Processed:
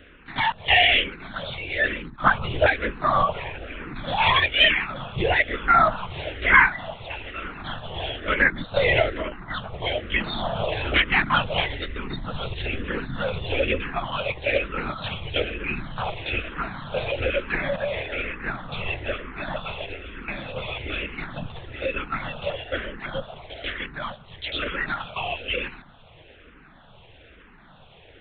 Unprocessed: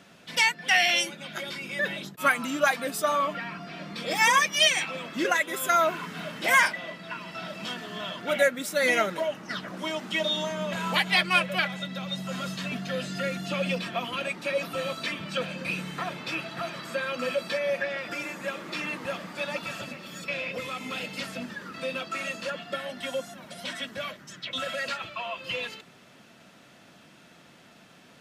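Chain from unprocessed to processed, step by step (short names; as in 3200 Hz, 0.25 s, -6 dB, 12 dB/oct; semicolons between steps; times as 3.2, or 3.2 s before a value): LPC vocoder at 8 kHz whisper; endless phaser -1.1 Hz; gain +7 dB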